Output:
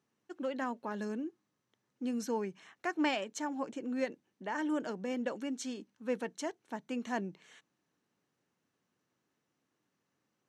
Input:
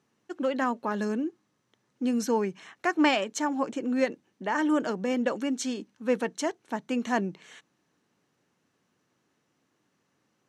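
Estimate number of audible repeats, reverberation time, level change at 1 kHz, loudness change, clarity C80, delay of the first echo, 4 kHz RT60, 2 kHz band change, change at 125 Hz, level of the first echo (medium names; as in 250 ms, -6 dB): no echo, no reverb, -9.0 dB, -8.5 dB, no reverb, no echo, no reverb, -8.5 dB, -8.5 dB, no echo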